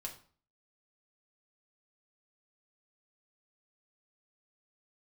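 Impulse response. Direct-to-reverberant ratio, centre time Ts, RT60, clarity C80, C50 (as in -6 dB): 0.5 dB, 15 ms, 0.45 s, 15.0 dB, 11.0 dB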